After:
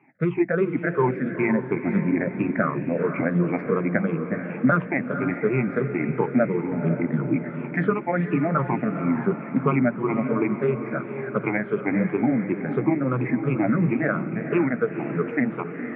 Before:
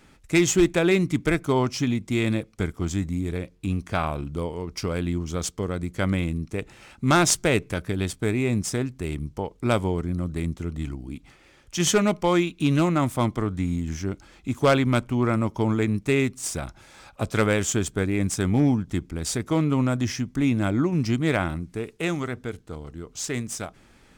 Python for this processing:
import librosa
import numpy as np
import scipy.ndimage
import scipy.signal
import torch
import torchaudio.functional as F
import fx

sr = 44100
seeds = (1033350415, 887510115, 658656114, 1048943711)

p1 = fx.spec_ripple(x, sr, per_octave=0.69, drift_hz=-1.9, depth_db=21)
p2 = fx.recorder_agc(p1, sr, target_db=-4.5, rise_db_per_s=12.0, max_gain_db=30)
p3 = fx.hum_notches(p2, sr, base_hz=60, count=3)
p4 = fx.stretch_grains(p3, sr, factor=0.66, grain_ms=91.0)
p5 = scipy.signal.sosfilt(scipy.signal.cheby1(5, 1.0, [130.0, 2300.0], 'bandpass', fs=sr, output='sos'), p4)
p6 = p5 + fx.echo_diffused(p5, sr, ms=487, feedback_pct=50, wet_db=-8.5, dry=0)
y = F.gain(torch.from_numpy(p6), -5.0).numpy()